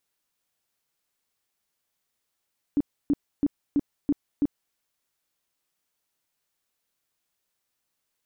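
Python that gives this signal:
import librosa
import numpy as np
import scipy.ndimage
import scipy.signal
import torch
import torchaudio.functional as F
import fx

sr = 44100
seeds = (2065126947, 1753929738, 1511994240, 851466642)

y = fx.tone_burst(sr, hz=287.0, cycles=10, every_s=0.33, bursts=6, level_db=-18.0)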